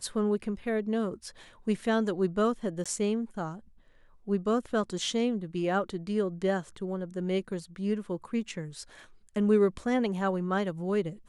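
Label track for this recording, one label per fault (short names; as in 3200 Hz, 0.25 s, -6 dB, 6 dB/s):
2.840000	2.860000	gap 16 ms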